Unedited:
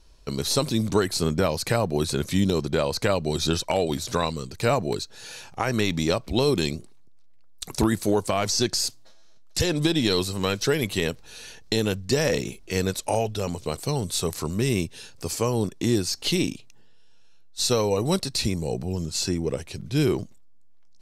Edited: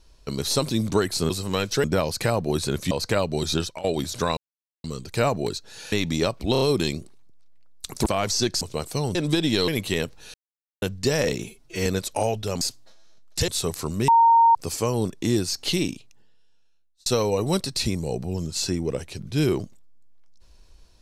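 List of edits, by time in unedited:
2.37–2.84 cut
3.47–3.77 fade out linear, to -18.5 dB
4.3 insert silence 0.47 s
5.38–5.79 cut
6.39 stutter 0.03 s, 4 plays
7.84–8.25 cut
8.8–9.67 swap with 13.53–14.07
10.2–10.74 move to 1.3
11.4–11.88 mute
12.5–12.78 stretch 1.5×
14.67–15.14 bleep 922 Hz -12 dBFS
16.29–17.65 fade out linear

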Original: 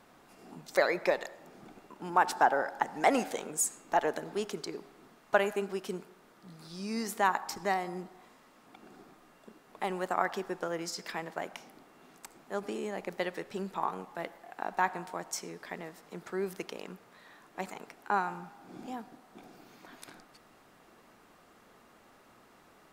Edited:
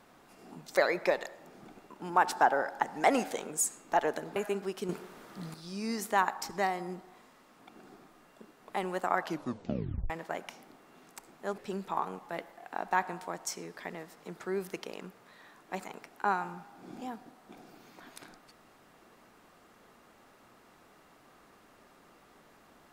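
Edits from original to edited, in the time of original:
4.36–5.43 cut
5.96–6.61 gain +9 dB
10.27 tape stop 0.90 s
12.65–13.44 cut

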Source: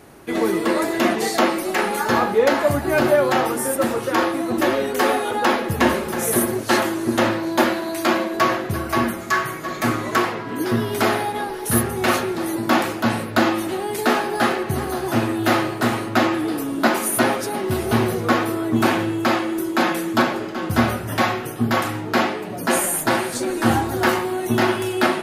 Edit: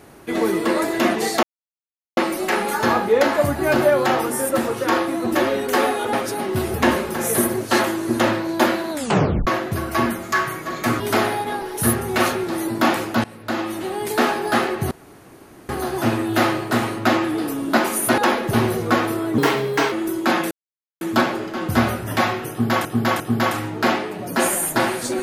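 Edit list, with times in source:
1.43 insert silence 0.74 s
5.39–5.72 swap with 17.28–17.89
7.89 tape stop 0.56 s
9.98–10.88 cut
13.12–13.9 fade in, from -20 dB
14.79 insert room tone 0.78 s
18.76–19.43 speed 124%
20.02 insert silence 0.50 s
21.51–21.86 loop, 3 plays

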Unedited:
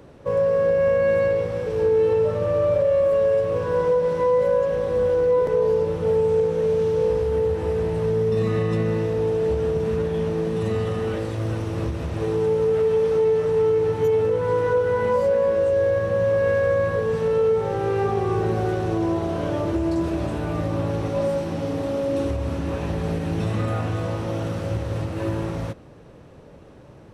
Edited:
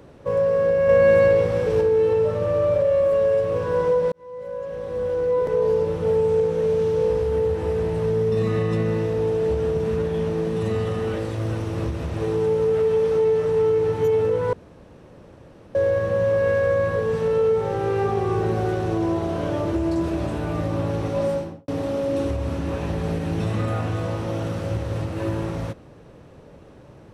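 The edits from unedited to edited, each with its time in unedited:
0.89–1.81 gain +4.5 dB
4.12–5.7 fade in
14.53–15.75 room tone
21.3–21.68 studio fade out

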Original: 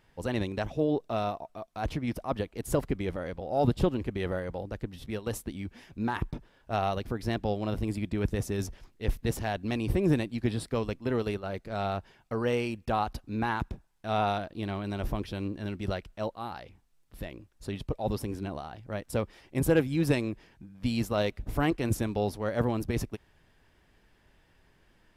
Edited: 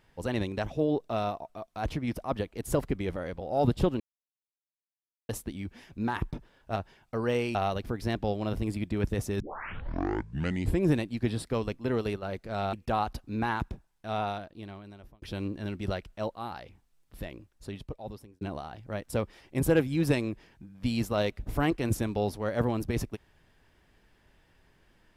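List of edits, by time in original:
4–5.29 mute
8.61 tape start 1.45 s
11.94–12.73 move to 6.76
13.64–15.22 fade out
17.32–18.41 fade out

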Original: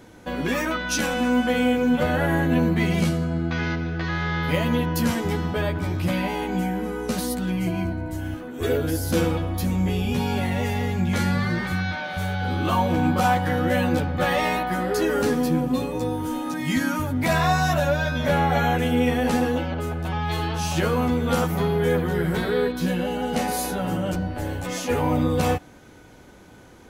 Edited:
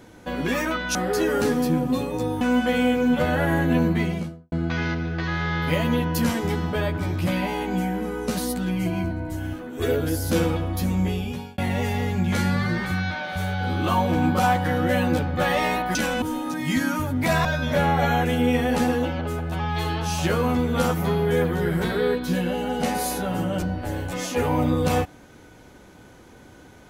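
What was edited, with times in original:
0.95–1.22 swap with 14.76–16.22
2.66–3.33 studio fade out
9.85–10.39 fade out
17.45–17.98 cut

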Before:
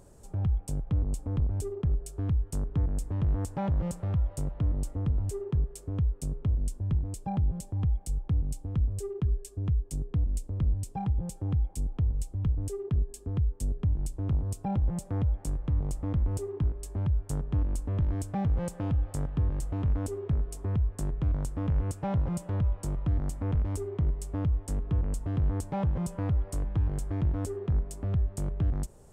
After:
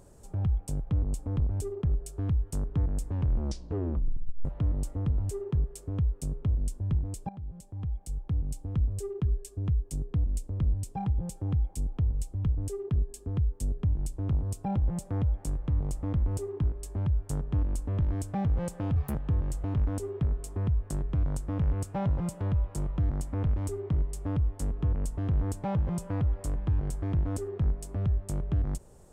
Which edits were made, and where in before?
3.09 tape stop 1.36 s
7.29–8.7 fade in, from -16.5 dB
18.96–19.23 speed 145%

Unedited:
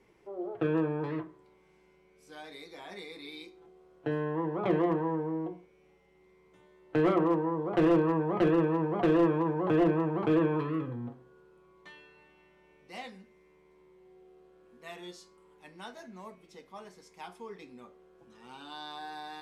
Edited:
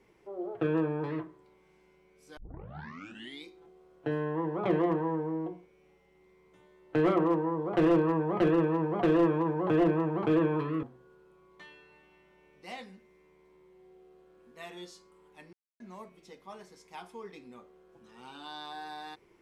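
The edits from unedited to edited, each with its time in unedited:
2.37 tape start 1.07 s
10.83–11.09 cut
15.79–16.06 mute

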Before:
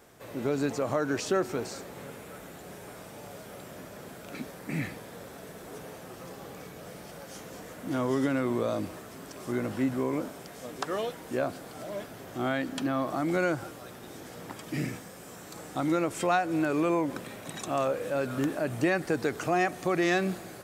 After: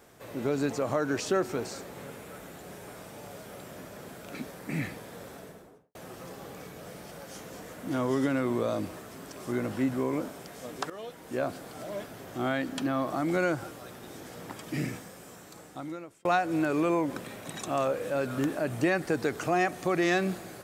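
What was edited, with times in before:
5.3–5.95 studio fade out
10.9–11.49 fade in, from -14.5 dB
14.99–16.25 fade out

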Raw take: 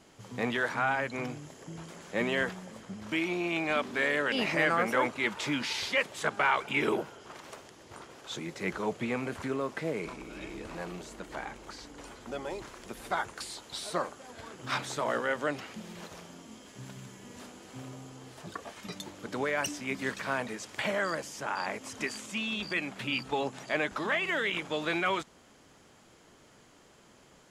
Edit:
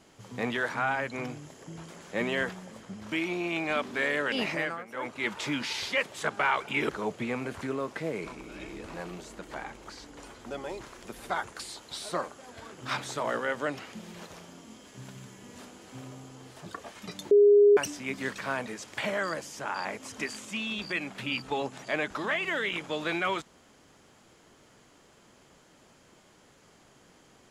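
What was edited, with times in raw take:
4.43–5.3 dip -18 dB, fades 0.42 s
6.89–8.7 cut
19.12–19.58 bleep 410 Hz -14.5 dBFS

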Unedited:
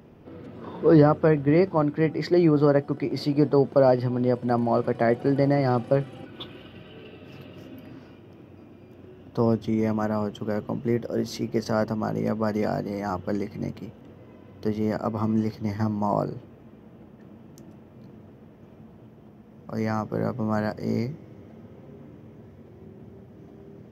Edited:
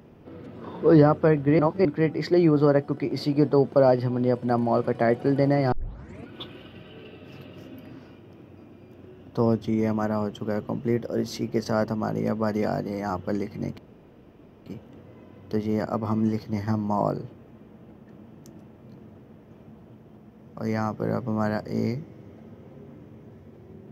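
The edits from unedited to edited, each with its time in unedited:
1.59–1.85 reverse
5.72 tape start 0.57 s
13.78 insert room tone 0.88 s

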